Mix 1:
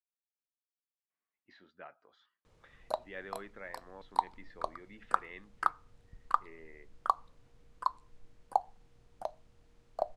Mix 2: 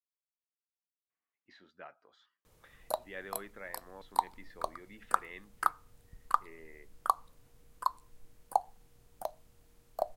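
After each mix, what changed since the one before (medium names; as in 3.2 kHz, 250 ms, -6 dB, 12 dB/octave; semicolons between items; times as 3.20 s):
master: remove distance through air 88 m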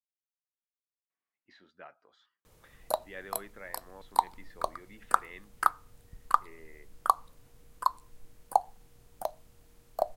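background +4.0 dB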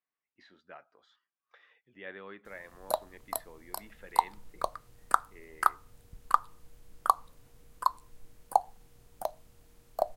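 speech: entry -1.10 s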